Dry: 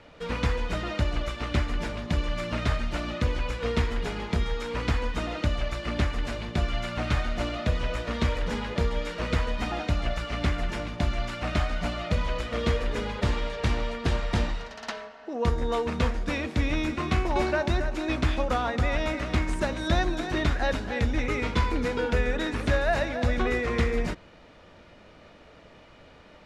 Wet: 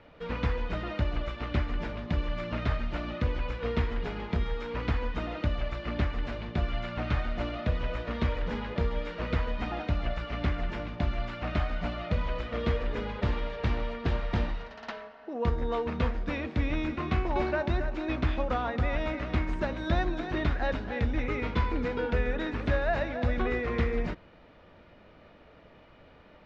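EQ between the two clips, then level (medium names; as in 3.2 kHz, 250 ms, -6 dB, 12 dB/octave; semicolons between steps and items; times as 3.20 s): distance through air 200 m; -2.5 dB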